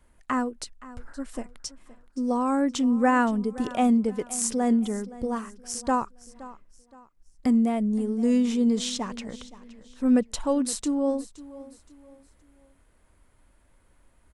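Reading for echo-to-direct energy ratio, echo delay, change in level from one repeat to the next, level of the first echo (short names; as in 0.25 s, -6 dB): -17.5 dB, 0.52 s, -9.0 dB, -18.0 dB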